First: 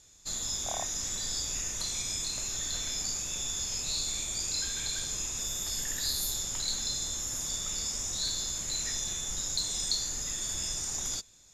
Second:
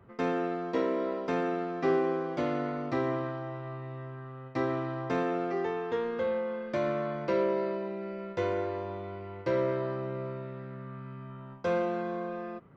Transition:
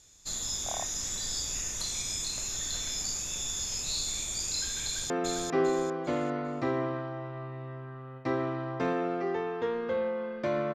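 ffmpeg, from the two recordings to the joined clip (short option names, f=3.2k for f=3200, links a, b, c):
-filter_complex "[0:a]apad=whole_dur=10.74,atrim=end=10.74,atrim=end=5.102[a];[1:a]atrim=start=1.398:end=7.04[b];[a][b]acrossfade=d=0.004:c1=hsin:c2=hsin,asplit=2[c][d];[d]afade=t=in:st=4.84:d=0.01,afade=t=out:st=5.1:d=0.01,aecho=0:1:400|800|1200|1600:0.707946|0.212384|0.0637151|0.0191145[e];[c][e]amix=inputs=2:normalize=0"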